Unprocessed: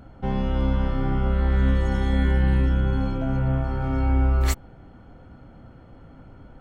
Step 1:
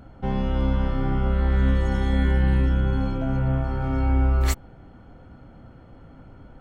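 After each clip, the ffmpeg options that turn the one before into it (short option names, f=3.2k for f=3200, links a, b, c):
-af anull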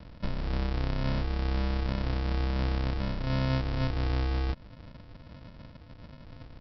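-af "acompressor=threshold=-25dB:ratio=4,aresample=11025,acrusher=samples=28:mix=1:aa=0.000001,aresample=44100,volume=-1.5dB"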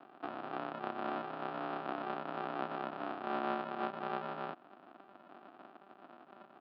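-af "aeval=exprs='val(0)*sin(2*PI*95*n/s)':c=same,highpass=f=300:w=0.5412,highpass=f=300:w=1.3066,equalizer=f=470:t=q:w=4:g=-8,equalizer=f=730:t=q:w=4:g=9,equalizer=f=1.3k:t=q:w=4:g=8,equalizer=f=2.1k:t=q:w=4:g=-9,lowpass=f=2.8k:w=0.5412,lowpass=f=2.8k:w=1.3066"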